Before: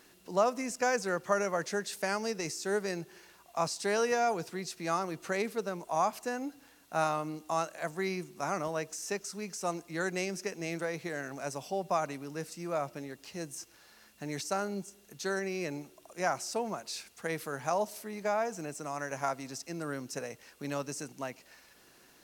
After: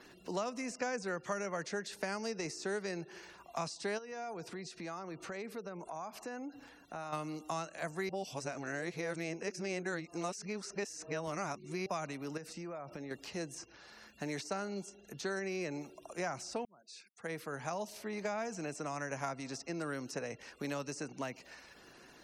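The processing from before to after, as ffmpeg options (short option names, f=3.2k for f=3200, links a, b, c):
-filter_complex "[0:a]asettb=1/sr,asplit=3[a][b][c];[a]atrim=end=2.124[d];[b]atrim=start=2.12:end=2.83,asetpts=PTS-STARTPTS,afade=t=in:d=0.004:c=qsin,afade=t=out:st=0.706:d=0.004:c=qsin,highshelf=f=4.1k:g=4.5[e];[c]atrim=start=2.826[f];[d][e]acrossfade=d=0.004:c1=hsin:c2=qsin[g];[g][f]acrossfade=d=0.004:c1=qsin:c2=hsin,asplit=3[h][i][j];[h]afade=t=out:st=3.97:d=0.02[k];[i]acompressor=threshold=-47dB:ratio=3:attack=3.2:release=140:knee=1:detection=peak,afade=t=in:st=3.97:d=0.02,afade=t=out:st=7.12:d=0.02[l];[j]afade=t=in:st=7.12:d=0.02[m];[k][l][m]amix=inputs=3:normalize=0,asettb=1/sr,asplit=3[n][o][p];[n]atrim=end=12.374[q];[o]atrim=start=12.37:end=13.11,asetpts=PTS-STARTPTS,afade=t=in:d=0.004:c=qsin,afade=t=out:st=0.736:d=0.004:c=qsin,acompressor=threshold=-43dB:ratio=16:attack=3.2:release=140:knee=1:detection=peak[r];[p]atrim=start=13.106[s];[q][r]acrossfade=d=0.004:c1=hsin:c2=qsin[t];[t][s]acrossfade=d=0.004:c1=qsin:c2=hsin,asplit=4[u][v][w][x];[u]atrim=end=8.092[y];[v]atrim=start=8.088:end=11.862,asetpts=PTS-STARTPTS,areverse[z];[w]atrim=start=11.858:end=16.65,asetpts=PTS-STARTPTS,afade=t=out:st=4.788:d=0.004:c=hsin[aa];[x]atrim=start=16.65,asetpts=PTS-STARTPTS,afade=t=in:d=1.66[ab];[y][z]acrossfade=d=0.004:c1=hsin:c2=hsin[ac];[aa][ab]concat=n=2:v=0:a=1[ad];[ac][ad]acrossfade=d=0.004:c1=hsin:c2=hsin,acrossover=split=290|1900|6000[ae][af][ag][ah];[ae]acompressor=threshold=-50dB:ratio=4[ai];[af]acompressor=threshold=-44dB:ratio=4[aj];[ag]acompressor=threshold=-50dB:ratio=4[ak];[ah]acompressor=threshold=-59dB:ratio=4[al];[ai][aj][ak][al]amix=inputs=4:normalize=0,highshelf=f=3.8k:g=-2.5,afftfilt=real='re*gte(hypot(re,im),0.000631)':imag='im*gte(hypot(re,im),0.000631)':win_size=1024:overlap=0.75,volume=4.5dB"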